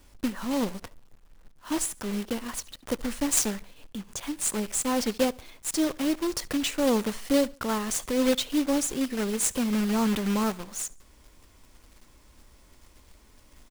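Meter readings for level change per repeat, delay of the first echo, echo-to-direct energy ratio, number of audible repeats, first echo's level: -8.0 dB, 71 ms, -23.5 dB, 2, -24.0 dB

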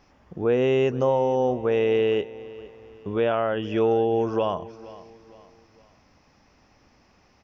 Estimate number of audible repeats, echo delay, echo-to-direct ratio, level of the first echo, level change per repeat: 3, 463 ms, -18.0 dB, -18.5 dB, -8.0 dB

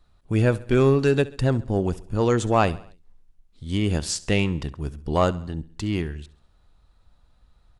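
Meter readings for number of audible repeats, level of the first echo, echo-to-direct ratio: 3, -19.5 dB, -18.0 dB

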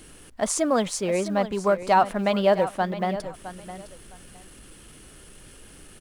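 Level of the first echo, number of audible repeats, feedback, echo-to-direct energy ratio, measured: -13.0 dB, 2, 21%, -13.0 dB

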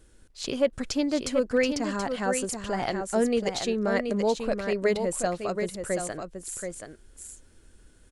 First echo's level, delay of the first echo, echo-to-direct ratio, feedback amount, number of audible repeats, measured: -6.5 dB, 729 ms, -6.5 dB, no regular repeats, 1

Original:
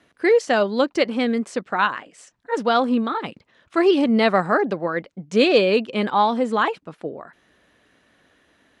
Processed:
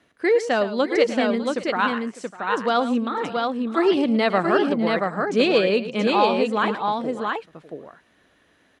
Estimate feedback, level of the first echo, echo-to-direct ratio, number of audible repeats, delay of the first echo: no regular repeats, -13.0 dB, -3.0 dB, 3, 111 ms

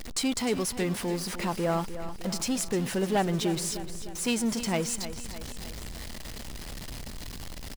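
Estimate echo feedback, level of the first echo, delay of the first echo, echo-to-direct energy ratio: 54%, -12.0 dB, 304 ms, -10.5 dB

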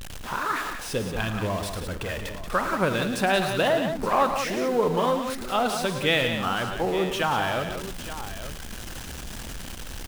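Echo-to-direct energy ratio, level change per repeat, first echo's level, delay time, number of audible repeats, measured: -5.0 dB, no regular repeats, -16.0 dB, 52 ms, 4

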